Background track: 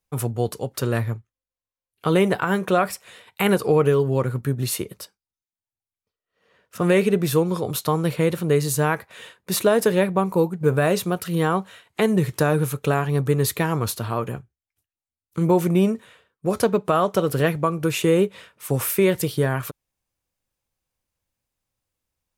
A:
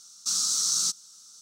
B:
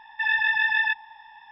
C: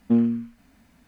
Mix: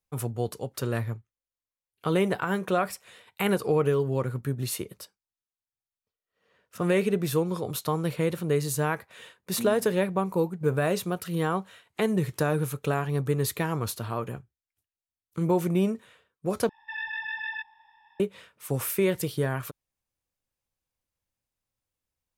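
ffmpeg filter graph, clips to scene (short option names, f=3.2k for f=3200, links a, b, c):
-filter_complex "[0:a]volume=-6dB,asplit=2[a][b];[a]atrim=end=16.694[c];[2:a]atrim=end=1.51,asetpts=PTS-STARTPTS,volume=-11.5dB[d];[b]atrim=start=18.196[e];[3:a]atrim=end=1.07,asetpts=PTS-STARTPTS,volume=-16dB,afade=t=in:d=0.004:c=hsin,afade=t=out:st=1.066:d=0.004:c=hsin,adelay=9480[f];[c][d]acrossfade=d=0.004:c1=hsin:c2=hsin[g];[g][e]acrossfade=d=0.004:c1=hsin:c2=hsin[h];[h][f]amix=inputs=2:normalize=0"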